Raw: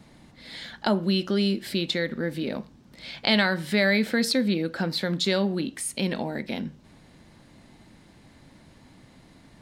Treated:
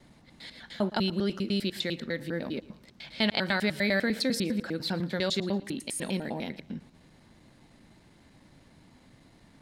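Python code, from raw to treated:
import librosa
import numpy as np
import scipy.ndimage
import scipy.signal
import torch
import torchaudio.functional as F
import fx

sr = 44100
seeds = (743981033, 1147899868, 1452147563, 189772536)

y = fx.block_reorder(x, sr, ms=100.0, group=2)
y = fx.echo_feedback(y, sr, ms=114, feedback_pct=36, wet_db=-20)
y = F.gain(torch.from_numpy(y), -4.5).numpy()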